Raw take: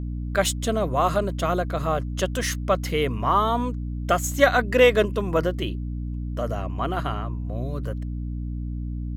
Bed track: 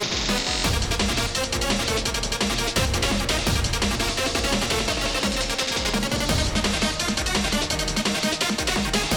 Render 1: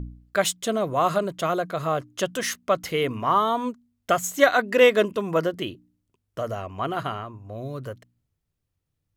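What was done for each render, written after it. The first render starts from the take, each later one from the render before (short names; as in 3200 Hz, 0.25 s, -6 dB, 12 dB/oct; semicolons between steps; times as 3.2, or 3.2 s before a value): de-hum 60 Hz, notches 5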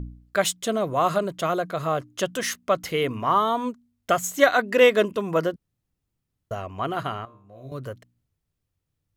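5.56–6.51 room tone; 7.25–7.72 resonator 66 Hz, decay 0.5 s, mix 90%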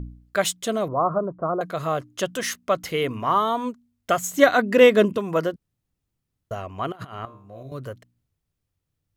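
0.88–1.61 steep low-pass 1300 Hz 48 dB/oct; 4.33–5.18 bell 150 Hz +9 dB 2.4 oct; 6.92–7.63 negative-ratio compressor -35 dBFS, ratio -0.5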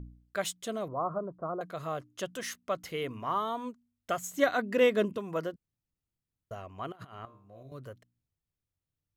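gain -10.5 dB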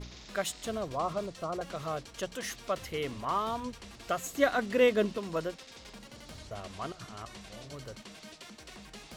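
add bed track -25.5 dB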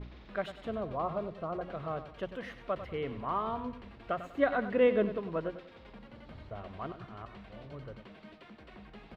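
air absorption 470 m; on a send: feedback echo 97 ms, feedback 36%, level -12 dB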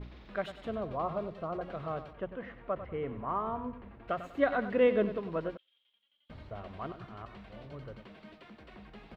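2.13–4.08 LPF 1800 Hz; 5.57–6.3 band-pass 3200 Hz, Q 19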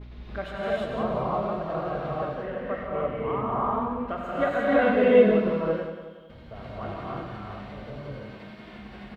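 on a send: feedback echo 0.183 s, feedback 44%, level -10 dB; on the sum: non-linear reverb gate 0.37 s rising, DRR -7 dB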